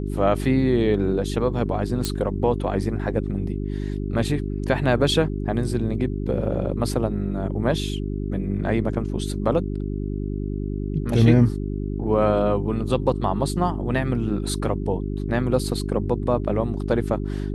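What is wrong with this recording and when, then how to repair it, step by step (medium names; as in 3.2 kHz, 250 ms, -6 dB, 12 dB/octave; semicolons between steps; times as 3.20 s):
hum 50 Hz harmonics 8 -27 dBFS
2.05 s: pop -9 dBFS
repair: de-click; de-hum 50 Hz, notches 8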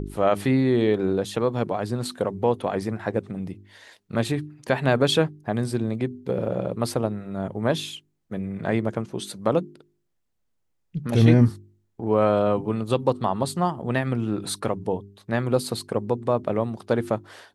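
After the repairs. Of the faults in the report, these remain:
2.05 s: pop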